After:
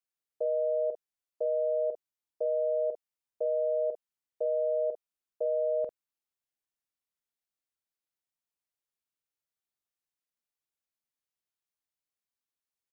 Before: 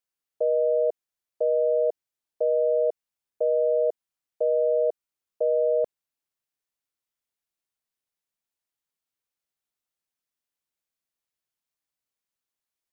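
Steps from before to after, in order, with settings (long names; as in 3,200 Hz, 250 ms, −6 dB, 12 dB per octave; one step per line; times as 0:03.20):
double-tracking delay 47 ms −9 dB
level −6.5 dB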